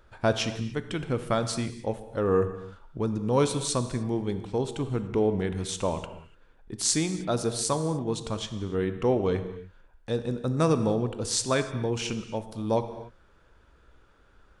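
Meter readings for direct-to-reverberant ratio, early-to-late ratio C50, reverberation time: 9.5 dB, 10.5 dB, not exponential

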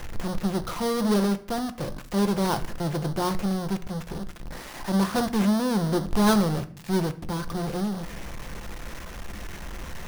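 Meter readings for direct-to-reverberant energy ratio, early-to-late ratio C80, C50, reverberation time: 9.0 dB, 20.0 dB, 16.0 dB, 0.55 s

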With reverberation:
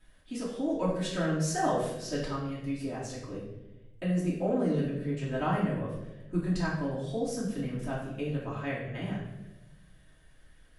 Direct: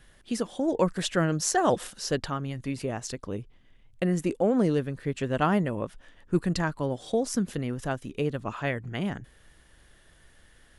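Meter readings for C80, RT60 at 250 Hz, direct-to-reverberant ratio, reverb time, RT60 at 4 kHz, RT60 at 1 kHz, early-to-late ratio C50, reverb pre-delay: 5.5 dB, 1.4 s, -8.5 dB, 1.0 s, 0.75 s, 0.85 s, 3.0 dB, 3 ms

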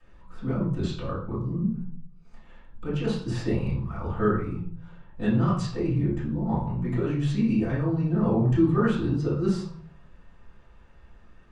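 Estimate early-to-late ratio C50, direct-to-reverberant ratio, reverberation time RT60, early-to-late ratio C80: 4.0 dB, -11.5 dB, 0.55 s, 9.0 dB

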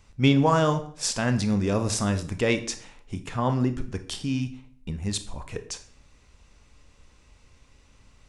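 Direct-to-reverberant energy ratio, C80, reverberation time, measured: 9.0 dB, 17.0 dB, 0.50 s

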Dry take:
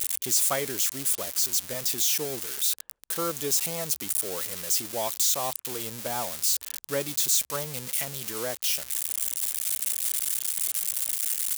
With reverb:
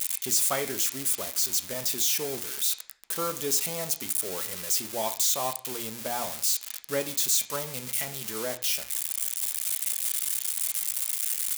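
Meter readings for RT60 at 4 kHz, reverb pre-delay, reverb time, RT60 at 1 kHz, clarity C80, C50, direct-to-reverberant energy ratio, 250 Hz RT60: 0.40 s, 3 ms, 0.50 s, 0.50 s, 17.5 dB, 14.0 dB, 6.0 dB, 0.55 s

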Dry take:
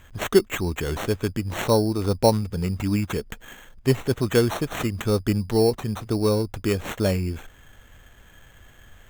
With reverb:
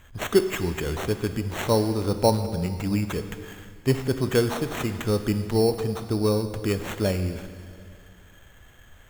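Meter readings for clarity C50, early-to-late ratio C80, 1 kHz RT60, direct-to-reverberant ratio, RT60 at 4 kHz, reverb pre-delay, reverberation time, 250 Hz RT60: 10.0 dB, 11.0 dB, 2.1 s, 9.0 dB, 2.1 s, 15 ms, 2.2 s, 2.3 s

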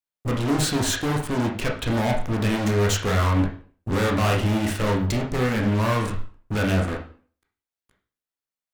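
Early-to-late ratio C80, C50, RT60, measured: 12.5 dB, 7.0 dB, 0.40 s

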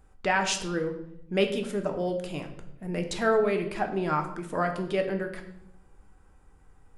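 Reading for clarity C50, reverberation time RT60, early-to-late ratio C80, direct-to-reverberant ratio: 9.5 dB, 0.80 s, 12.0 dB, 4.5 dB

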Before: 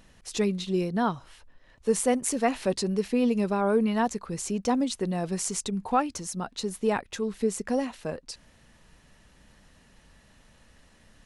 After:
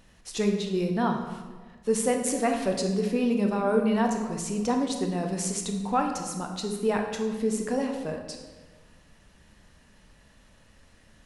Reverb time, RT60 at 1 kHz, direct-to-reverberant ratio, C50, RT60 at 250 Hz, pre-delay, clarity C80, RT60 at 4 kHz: 1.4 s, 1.3 s, 3.0 dB, 5.5 dB, 1.7 s, 20 ms, 7.5 dB, 0.95 s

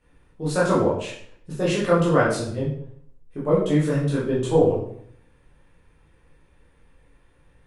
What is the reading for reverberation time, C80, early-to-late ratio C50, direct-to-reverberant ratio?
0.65 s, 7.5 dB, 3.5 dB, -8.5 dB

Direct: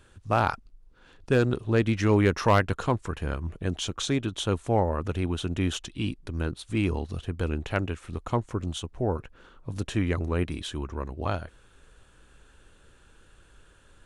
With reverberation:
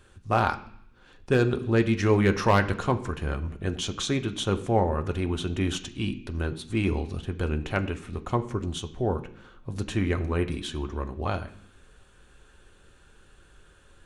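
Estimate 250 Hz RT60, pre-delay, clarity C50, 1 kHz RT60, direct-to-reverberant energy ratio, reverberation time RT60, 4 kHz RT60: 0.90 s, 3 ms, 14.5 dB, 0.70 s, 6.0 dB, 0.65 s, 0.80 s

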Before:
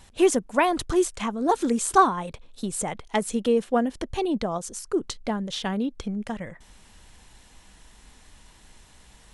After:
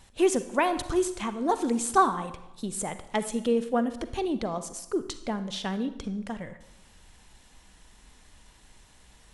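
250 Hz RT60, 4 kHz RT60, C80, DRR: 1.0 s, 0.70 s, 14.5 dB, 11.0 dB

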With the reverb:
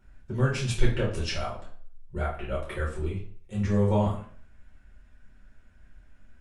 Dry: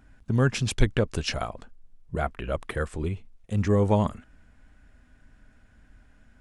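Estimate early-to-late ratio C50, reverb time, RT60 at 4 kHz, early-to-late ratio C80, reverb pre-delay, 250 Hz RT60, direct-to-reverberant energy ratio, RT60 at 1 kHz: 6.0 dB, 0.50 s, 0.40 s, 11.0 dB, 5 ms, 0.45 s, -5.5 dB, 0.50 s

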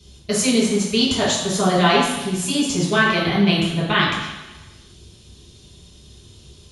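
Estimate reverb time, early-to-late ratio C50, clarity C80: 1.1 s, 2.0 dB, 4.0 dB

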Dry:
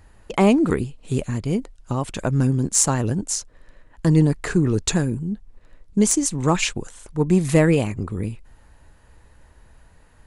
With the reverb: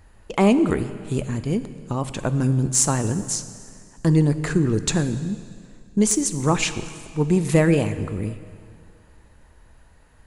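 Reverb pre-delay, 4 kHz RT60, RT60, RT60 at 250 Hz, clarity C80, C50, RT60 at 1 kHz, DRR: 4 ms, 2.0 s, 2.2 s, 2.2 s, 13.5 dB, 12.5 dB, 2.2 s, 11.5 dB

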